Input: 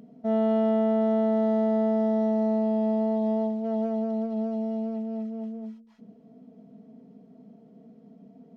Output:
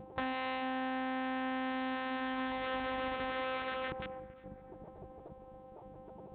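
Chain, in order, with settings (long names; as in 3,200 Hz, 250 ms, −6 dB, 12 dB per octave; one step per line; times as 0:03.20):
sub-octave generator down 1 octave, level +3 dB
low-shelf EQ 210 Hz +10.5 dB
wrong playback speed 33 rpm record played at 45 rpm
in parallel at −3.5 dB: wrap-around overflow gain 17 dB
on the sum: downward compressor 4 to 1, threshold −28 dBFS, peak gain reduction 14 dB
one-pitch LPC vocoder at 8 kHz 260 Hz
gate on every frequency bin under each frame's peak −15 dB weak
dynamic equaliser 1,600 Hz, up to +5 dB, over −54 dBFS, Q 1.1
bucket-brigade delay 277 ms, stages 4,096, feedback 57%, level −19.5 dB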